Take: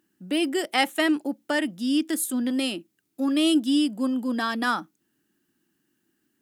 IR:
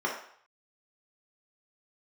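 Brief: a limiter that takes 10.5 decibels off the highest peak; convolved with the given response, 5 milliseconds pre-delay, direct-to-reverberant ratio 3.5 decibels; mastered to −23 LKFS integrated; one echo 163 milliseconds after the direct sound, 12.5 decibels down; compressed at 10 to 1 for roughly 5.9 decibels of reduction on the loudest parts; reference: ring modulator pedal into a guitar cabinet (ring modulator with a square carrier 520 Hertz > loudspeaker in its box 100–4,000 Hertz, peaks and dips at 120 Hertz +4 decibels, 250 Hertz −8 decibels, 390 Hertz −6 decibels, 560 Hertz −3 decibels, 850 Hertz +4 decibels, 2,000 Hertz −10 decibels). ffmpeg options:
-filter_complex "[0:a]acompressor=threshold=-23dB:ratio=10,alimiter=limit=-21dB:level=0:latency=1,aecho=1:1:163:0.237,asplit=2[link_01][link_02];[1:a]atrim=start_sample=2205,adelay=5[link_03];[link_02][link_03]afir=irnorm=-1:irlink=0,volume=-13dB[link_04];[link_01][link_04]amix=inputs=2:normalize=0,aeval=exprs='val(0)*sgn(sin(2*PI*520*n/s))':channel_layout=same,highpass=100,equalizer=frequency=120:width_type=q:width=4:gain=4,equalizer=frequency=250:width_type=q:width=4:gain=-8,equalizer=frequency=390:width_type=q:width=4:gain=-6,equalizer=frequency=560:width_type=q:width=4:gain=-3,equalizer=frequency=850:width_type=q:width=4:gain=4,equalizer=frequency=2000:width_type=q:width=4:gain=-10,lowpass=frequency=4000:width=0.5412,lowpass=frequency=4000:width=1.3066,volume=5.5dB"

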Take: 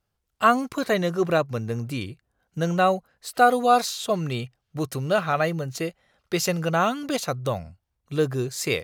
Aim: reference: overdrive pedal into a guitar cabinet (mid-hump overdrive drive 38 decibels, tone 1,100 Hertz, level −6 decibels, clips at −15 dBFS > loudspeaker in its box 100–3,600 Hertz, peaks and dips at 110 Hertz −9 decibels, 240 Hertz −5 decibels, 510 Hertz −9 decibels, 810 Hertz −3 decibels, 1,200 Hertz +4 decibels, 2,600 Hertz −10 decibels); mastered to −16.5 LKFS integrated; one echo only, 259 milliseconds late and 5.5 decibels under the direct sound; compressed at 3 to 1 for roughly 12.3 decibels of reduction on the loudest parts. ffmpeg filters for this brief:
ffmpeg -i in.wav -filter_complex "[0:a]acompressor=threshold=-29dB:ratio=3,aecho=1:1:259:0.531,asplit=2[link_01][link_02];[link_02]highpass=frequency=720:poles=1,volume=38dB,asoftclip=type=tanh:threshold=-15dB[link_03];[link_01][link_03]amix=inputs=2:normalize=0,lowpass=frequency=1100:poles=1,volume=-6dB,highpass=100,equalizer=frequency=110:width_type=q:width=4:gain=-9,equalizer=frequency=240:width_type=q:width=4:gain=-5,equalizer=frequency=510:width_type=q:width=4:gain=-9,equalizer=frequency=810:width_type=q:width=4:gain=-3,equalizer=frequency=1200:width_type=q:width=4:gain=4,equalizer=frequency=2600:width_type=q:width=4:gain=-10,lowpass=frequency=3600:width=0.5412,lowpass=frequency=3600:width=1.3066,volume=10.5dB" out.wav

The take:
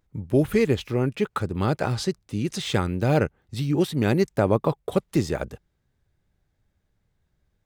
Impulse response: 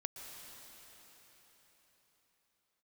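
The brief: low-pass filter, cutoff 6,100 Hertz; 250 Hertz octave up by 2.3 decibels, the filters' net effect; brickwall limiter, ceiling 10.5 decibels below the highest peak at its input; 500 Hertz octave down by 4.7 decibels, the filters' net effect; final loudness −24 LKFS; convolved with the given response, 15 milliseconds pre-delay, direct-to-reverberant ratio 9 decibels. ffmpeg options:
-filter_complex "[0:a]lowpass=6100,equalizer=frequency=250:width_type=o:gain=5.5,equalizer=frequency=500:width_type=o:gain=-8.5,alimiter=limit=-18.5dB:level=0:latency=1,asplit=2[link_01][link_02];[1:a]atrim=start_sample=2205,adelay=15[link_03];[link_02][link_03]afir=irnorm=-1:irlink=0,volume=-7.5dB[link_04];[link_01][link_04]amix=inputs=2:normalize=0,volume=5dB"

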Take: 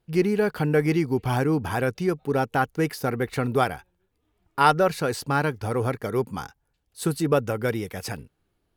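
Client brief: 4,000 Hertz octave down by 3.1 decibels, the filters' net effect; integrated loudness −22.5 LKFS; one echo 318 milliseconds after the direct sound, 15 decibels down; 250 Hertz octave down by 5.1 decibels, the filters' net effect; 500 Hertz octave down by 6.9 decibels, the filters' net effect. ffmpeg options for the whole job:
ffmpeg -i in.wav -af "equalizer=frequency=250:width_type=o:gain=-5,equalizer=frequency=500:width_type=o:gain=-7,equalizer=frequency=4000:width_type=o:gain=-4,aecho=1:1:318:0.178,volume=6dB" out.wav

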